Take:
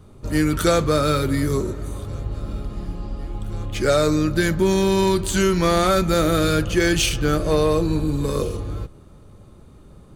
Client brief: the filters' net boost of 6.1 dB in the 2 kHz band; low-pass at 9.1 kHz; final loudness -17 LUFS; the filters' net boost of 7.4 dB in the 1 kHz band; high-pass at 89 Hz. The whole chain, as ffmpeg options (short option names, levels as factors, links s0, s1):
-af "highpass=89,lowpass=9100,equalizer=f=1000:t=o:g=8,equalizer=f=2000:t=o:g=5,volume=1.06"